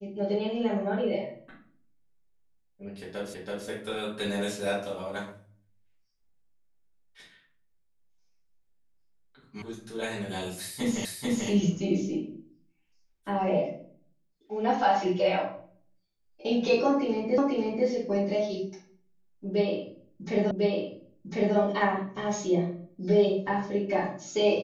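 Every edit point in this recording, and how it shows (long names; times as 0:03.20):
0:03.34: the same again, the last 0.33 s
0:09.62: cut off before it has died away
0:11.05: the same again, the last 0.44 s
0:17.38: the same again, the last 0.49 s
0:20.51: the same again, the last 1.05 s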